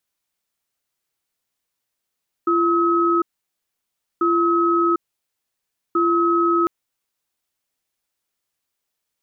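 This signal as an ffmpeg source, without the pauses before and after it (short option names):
-f lavfi -i "aevalsrc='0.133*(sin(2*PI*341*t)+sin(2*PI*1280*t))*clip(min(mod(t,1.74),0.75-mod(t,1.74))/0.005,0,1)':d=4.2:s=44100"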